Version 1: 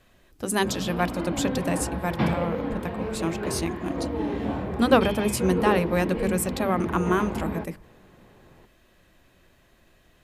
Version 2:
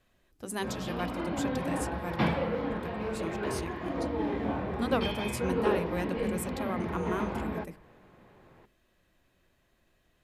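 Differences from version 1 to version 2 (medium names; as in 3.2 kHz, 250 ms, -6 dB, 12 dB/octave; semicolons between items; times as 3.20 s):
speech -10.5 dB; background: add bass shelf 450 Hz -5 dB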